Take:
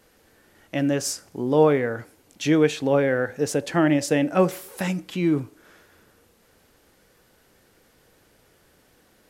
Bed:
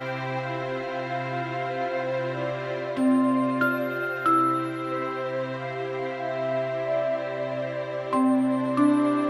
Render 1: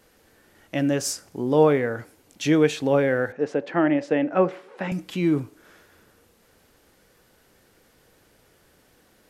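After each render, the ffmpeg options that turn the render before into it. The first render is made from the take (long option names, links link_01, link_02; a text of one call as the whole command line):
ffmpeg -i in.wav -filter_complex "[0:a]asettb=1/sr,asplit=3[link_01][link_02][link_03];[link_01]atrim=end=3.324[link_04];[link_02]atrim=start=3.32:end=4.92,asetpts=PTS-STARTPTS,afade=type=in:duration=0.004:curve=qsin,afade=type=out:start_time=1.596:duration=0.004:curve=qsin,highpass=220,lowpass=2200[link_05];[link_03]atrim=start=4.916[link_06];[link_04][link_05]acrossfade=duration=0.004:curve1=hsin:curve2=qsin[link_07];[link_07][link_06]acrossfade=duration=0.004:curve1=qsin:curve2=hsin" out.wav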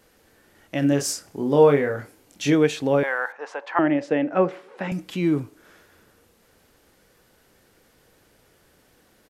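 ffmpeg -i in.wav -filter_complex "[0:a]asplit=3[link_01][link_02][link_03];[link_01]afade=type=out:start_time=0.81:duration=0.02[link_04];[link_02]asplit=2[link_05][link_06];[link_06]adelay=28,volume=-5dB[link_07];[link_05][link_07]amix=inputs=2:normalize=0,afade=type=in:start_time=0.81:duration=0.02,afade=type=out:start_time=2.53:duration=0.02[link_08];[link_03]afade=type=in:start_time=2.53:duration=0.02[link_09];[link_04][link_08][link_09]amix=inputs=3:normalize=0,asettb=1/sr,asplit=3[link_10][link_11][link_12];[link_10]atrim=end=3.034[link_13];[link_11]atrim=start=3.03:end=3.79,asetpts=PTS-STARTPTS,afade=type=in:duration=0.004:curve=qsin,afade=type=out:start_time=0.756:duration=0.004:curve=qsin,highpass=frequency=960:width_type=q:width=3.7[link_14];[link_12]atrim=start=3.786[link_15];[link_13][link_14]acrossfade=duration=0.004:curve1=hsin:curve2=qsin[link_16];[link_16][link_15]acrossfade=duration=0.004:curve1=qsin:curve2=hsin" out.wav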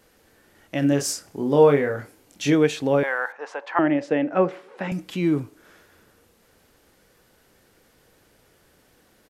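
ffmpeg -i in.wav -af anull out.wav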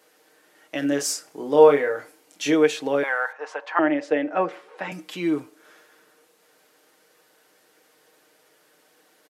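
ffmpeg -i in.wav -af "highpass=370,aecho=1:1:6.5:0.5" out.wav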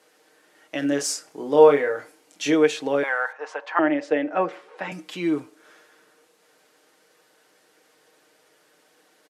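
ffmpeg -i in.wav -af "lowpass=11000" out.wav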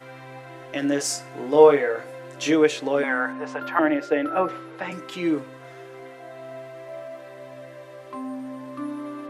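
ffmpeg -i in.wav -i bed.wav -filter_complex "[1:a]volume=-11.5dB[link_01];[0:a][link_01]amix=inputs=2:normalize=0" out.wav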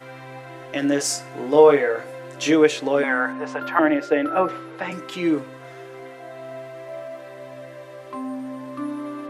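ffmpeg -i in.wav -af "volume=2.5dB,alimiter=limit=-3dB:level=0:latency=1" out.wav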